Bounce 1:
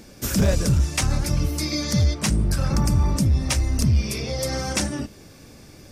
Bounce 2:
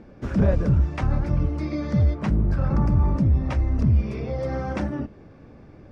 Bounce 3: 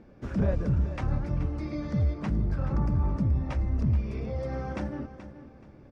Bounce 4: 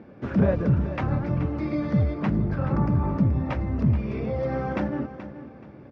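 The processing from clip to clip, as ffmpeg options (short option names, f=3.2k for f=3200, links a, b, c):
-af "lowpass=1.4k"
-af "aecho=1:1:428|856|1284:0.237|0.064|0.0173,volume=-6.5dB"
-af "highpass=110,lowpass=3.3k,volume=7.5dB"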